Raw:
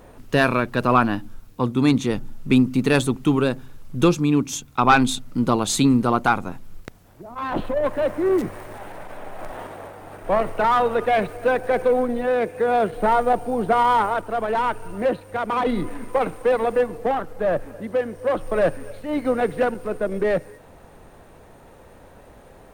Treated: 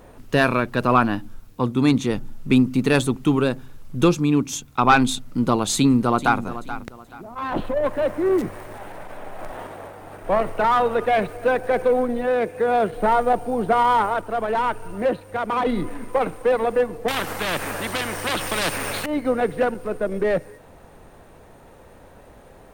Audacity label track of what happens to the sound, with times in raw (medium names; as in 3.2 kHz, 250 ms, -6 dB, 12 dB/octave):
5.750000	6.410000	echo throw 430 ms, feedback 30%, level -13 dB
17.080000	19.060000	spectrum-flattening compressor 4:1